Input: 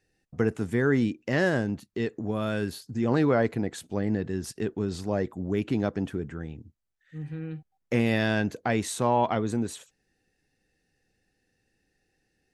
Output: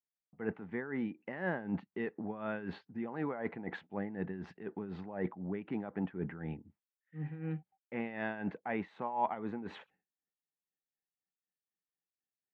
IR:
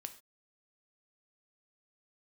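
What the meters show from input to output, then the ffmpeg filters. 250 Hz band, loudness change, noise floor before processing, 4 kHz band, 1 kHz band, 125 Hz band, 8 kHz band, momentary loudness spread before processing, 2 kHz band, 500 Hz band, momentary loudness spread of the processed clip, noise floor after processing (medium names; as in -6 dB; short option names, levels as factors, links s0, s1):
-11.0 dB, -12.0 dB, -76 dBFS, -19.0 dB, -8.0 dB, -13.0 dB, under -35 dB, 14 LU, -10.5 dB, -12.5 dB, 7 LU, under -85 dBFS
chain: -af "agate=range=0.0224:threshold=0.002:ratio=3:detection=peak,adynamicequalizer=threshold=0.0112:dfrequency=1100:dqfactor=0.78:tfrequency=1100:tqfactor=0.78:attack=5:release=100:ratio=0.375:range=2.5:mode=boostabove:tftype=bell,areverse,acompressor=threshold=0.0178:ratio=5,areverse,tremolo=f=4:d=0.69,highpass=120,equalizer=f=120:t=q:w=4:g=-8,equalizer=f=180:t=q:w=4:g=7,equalizer=f=840:t=q:w=4:g=8,equalizer=f=2000:t=q:w=4:g=4,lowpass=f=2700:w=0.5412,lowpass=f=2700:w=1.3066,volume=1.19"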